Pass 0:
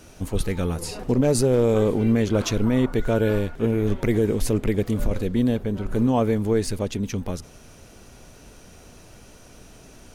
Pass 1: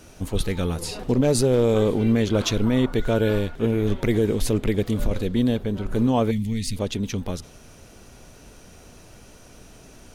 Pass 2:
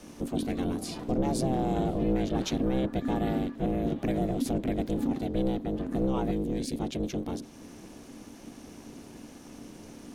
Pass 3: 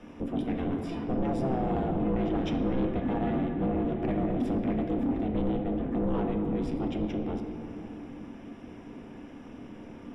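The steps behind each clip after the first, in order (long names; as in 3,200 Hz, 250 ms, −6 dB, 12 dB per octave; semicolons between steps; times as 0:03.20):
gain on a spectral selection 0:06.31–0:06.76, 290–1,800 Hz −20 dB; dynamic equaliser 3,600 Hz, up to +6 dB, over −54 dBFS, Q 2.1
sub-octave generator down 2 octaves, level +4 dB; downward compressor 1.5 to 1, threshold −37 dBFS, peak gain reduction 9.5 dB; ring modulation 260 Hz
Savitzky-Golay smoothing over 25 samples; on a send at −3 dB: convolution reverb RT60 2.8 s, pre-delay 4 ms; on the sum: soft clipping −21 dBFS, distortion −15 dB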